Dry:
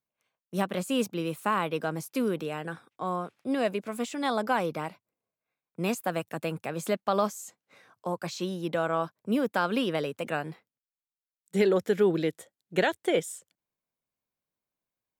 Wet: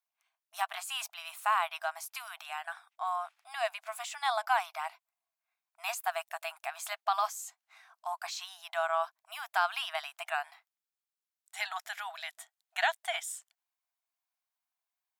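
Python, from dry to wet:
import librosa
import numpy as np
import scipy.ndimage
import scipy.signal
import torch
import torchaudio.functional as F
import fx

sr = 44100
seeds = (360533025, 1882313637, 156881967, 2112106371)

y = fx.brickwall_highpass(x, sr, low_hz=640.0)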